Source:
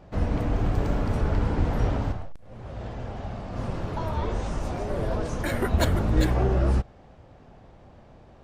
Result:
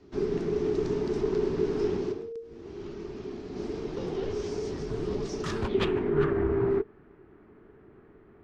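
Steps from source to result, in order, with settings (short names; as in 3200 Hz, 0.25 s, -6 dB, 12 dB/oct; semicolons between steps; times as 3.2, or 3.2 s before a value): self-modulated delay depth 0.25 ms; low-pass sweep 6200 Hz -> 2100 Hz, 5.48–6.14; frequency shift -460 Hz; gain -4.5 dB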